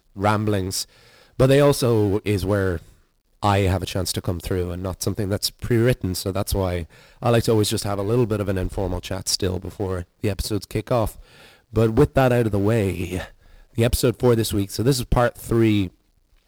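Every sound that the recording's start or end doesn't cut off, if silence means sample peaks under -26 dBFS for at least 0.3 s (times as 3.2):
1.4–2.77
3.43–6.82
7.23–11.11
11.76–13.24
13.78–15.87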